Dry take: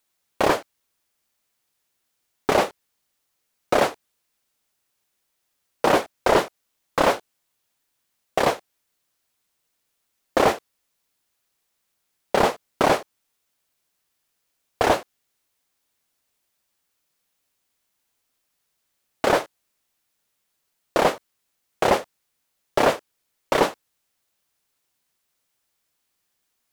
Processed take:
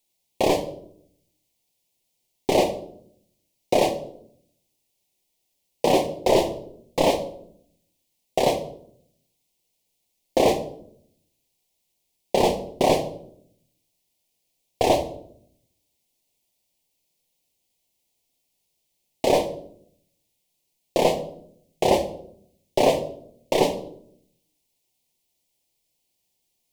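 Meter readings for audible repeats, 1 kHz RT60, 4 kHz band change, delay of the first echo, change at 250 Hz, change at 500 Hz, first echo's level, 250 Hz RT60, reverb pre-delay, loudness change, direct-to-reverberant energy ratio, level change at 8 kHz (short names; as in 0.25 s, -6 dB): none, 0.55 s, +0.5 dB, none, +1.5 dB, +1.0 dB, none, 1.0 s, 6 ms, -0.5 dB, 5.5 dB, +0.5 dB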